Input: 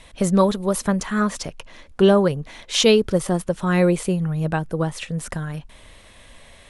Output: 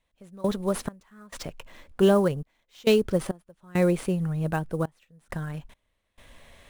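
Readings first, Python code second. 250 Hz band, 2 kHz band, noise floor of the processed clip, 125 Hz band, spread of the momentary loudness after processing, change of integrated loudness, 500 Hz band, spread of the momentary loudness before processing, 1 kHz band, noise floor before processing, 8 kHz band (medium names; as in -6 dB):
-6.5 dB, -8.0 dB, -76 dBFS, -6.0 dB, 18 LU, -5.5 dB, -5.5 dB, 15 LU, -8.5 dB, -48 dBFS, -12.5 dB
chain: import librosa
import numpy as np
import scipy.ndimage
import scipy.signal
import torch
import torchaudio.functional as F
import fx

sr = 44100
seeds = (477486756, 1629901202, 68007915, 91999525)

p1 = fx.step_gate(x, sr, bpm=68, pattern='..xx..xxxxx', floor_db=-24.0, edge_ms=4.5)
p2 = fx.sample_hold(p1, sr, seeds[0], rate_hz=10000.0, jitter_pct=20)
p3 = p1 + F.gain(torch.from_numpy(p2), -3.5).numpy()
y = F.gain(torch.from_numpy(p3), -9.0).numpy()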